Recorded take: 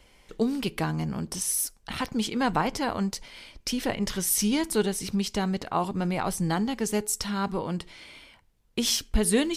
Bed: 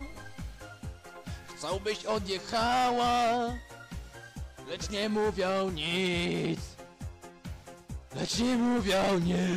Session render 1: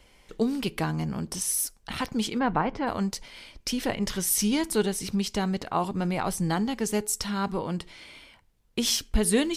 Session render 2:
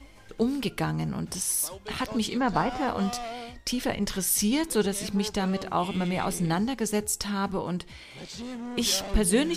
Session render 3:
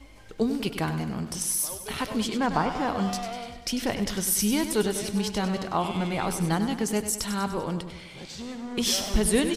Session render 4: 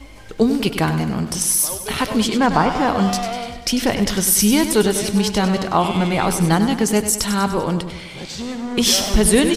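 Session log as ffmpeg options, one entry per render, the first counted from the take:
-filter_complex "[0:a]asplit=3[s0][s1][s2];[s0]afade=t=out:st=2.38:d=0.02[s3];[s1]lowpass=2100,afade=t=in:st=2.38:d=0.02,afade=t=out:st=2.86:d=0.02[s4];[s2]afade=t=in:st=2.86:d=0.02[s5];[s3][s4][s5]amix=inputs=3:normalize=0"
-filter_complex "[1:a]volume=0.335[s0];[0:a][s0]amix=inputs=2:normalize=0"
-af "aecho=1:1:98|196|294|392|490|588:0.316|0.177|0.0992|0.0555|0.0311|0.0174"
-af "volume=2.99,alimiter=limit=0.708:level=0:latency=1"

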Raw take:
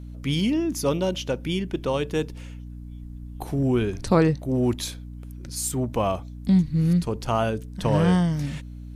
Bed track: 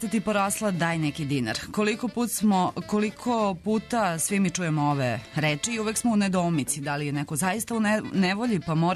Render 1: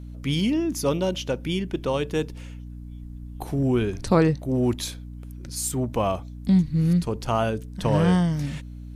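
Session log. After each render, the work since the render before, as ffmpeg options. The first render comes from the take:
-af anull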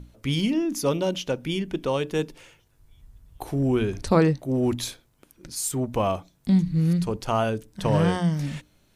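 -af "bandreject=f=60:t=h:w=6,bandreject=f=120:t=h:w=6,bandreject=f=180:t=h:w=6,bandreject=f=240:t=h:w=6,bandreject=f=300:t=h:w=6"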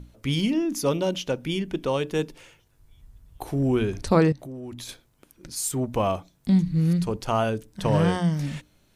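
-filter_complex "[0:a]asettb=1/sr,asplit=3[s0][s1][s2];[s0]atrim=end=4.324[s3];[s1]atrim=start=4.32:end=4.89,asetpts=PTS-STARTPTS,afade=t=in:d=0.004:c=qsin,afade=t=out:st=0.566:d=0.004:c=qsin,acompressor=threshold=0.0178:ratio=6:attack=3.2:release=140:knee=1:detection=peak[s4];[s2]atrim=start=4.886[s5];[s3][s4]acrossfade=d=0.004:c1=hsin:c2=qsin[s6];[s6][s5]acrossfade=d=0.004:c1=qsin:c2=hsin"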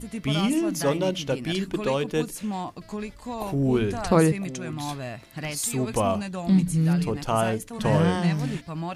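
-filter_complex "[1:a]volume=0.376[s0];[0:a][s0]amix=inputs=2:normalize=0"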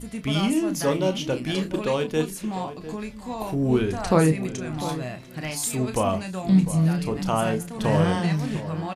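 -filter_complex "[0:a]asplit=2[s0][s1];[s1]adelay=32,volume=0.355[s2];[s0][s2]amix=inputs=2:normalize=0,asplit=2[s3][s4];[s4]adelay=699.7,volume=0.224,highshelf=f=4000:g=-15.7[s5];[s3][s5]amix=inputs=2:normalize=0"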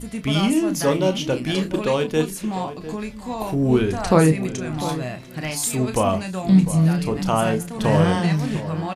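-af "volume=1.5"

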